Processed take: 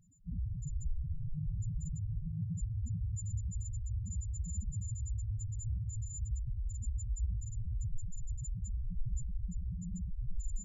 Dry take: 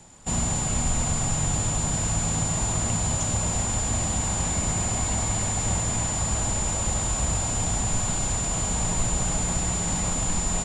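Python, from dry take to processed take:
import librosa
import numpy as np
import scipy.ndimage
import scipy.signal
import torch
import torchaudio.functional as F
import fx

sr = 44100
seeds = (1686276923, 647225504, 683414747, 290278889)

y = fx.notch(x, sr, hz=7300.0, q=9.0)
y = fx.spec_topn(y, sr, count=2)
y = y * librosa.db_to_amplitude(-4.0)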